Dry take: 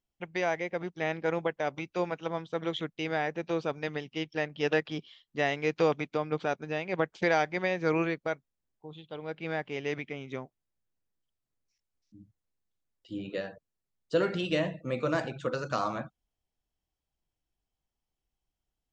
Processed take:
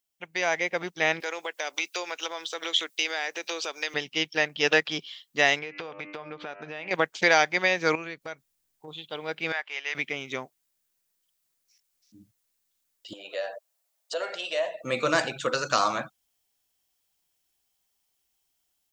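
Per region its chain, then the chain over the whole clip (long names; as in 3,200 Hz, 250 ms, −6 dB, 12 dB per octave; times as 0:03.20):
0:01.20–0:03.94: high-pass filter 310 Hz 24 dB per octave + downward compressor 3 to 1, threshold −39 dBFS + high-shelf EQ 2,800 Hz +11.5 dB
0:05.59–0:06.91: low-pass filter 3,000 Hz + hum removal 100.2 Hz, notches 30 + downward compressor 20 to 1, threshold −37 dBFS
0:07.95–0:08.88: low-shelf EQ 120 Hz +10.5 dB + downward compressor 3 to 1, threshold −42 dBFS
0:09.52–0:09.95: high-pass filter 1,100 Hz + high-shelf EQ 3,700 Hz −12 dB
0:13.13–0:14.84: downward compressor 2 to 1, threshold −45 dBFS + high-pass with resonance 630 Hz, resonance Q 4.1
whole clip: spectral tilt +3.5 dB per octave; automatic gain control gain up to 8 dB; level −1 dB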